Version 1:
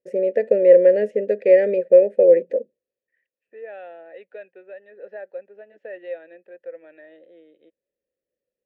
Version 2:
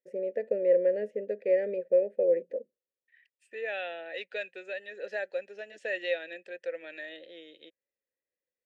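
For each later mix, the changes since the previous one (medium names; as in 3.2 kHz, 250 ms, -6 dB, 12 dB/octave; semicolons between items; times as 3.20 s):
first voice -12.0 dB; second voice: remove low-pass 1.1 kHz 12 dB/octave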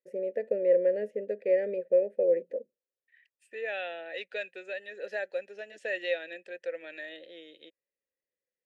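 master: add peaking EQ 11 kHz +8.5 dB 0.44 oct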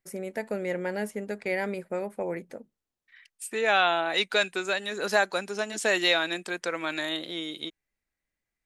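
first voice: add resonant low shelf 690 Hz -10.5 dB, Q 1.5; master: remove vowel filter e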